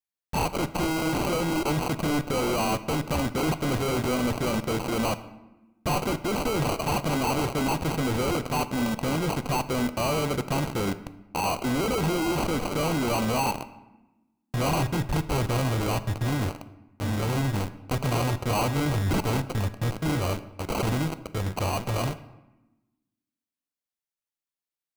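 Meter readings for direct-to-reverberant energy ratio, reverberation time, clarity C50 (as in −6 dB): 11.5 dB, 1.0 s, 14.5 dB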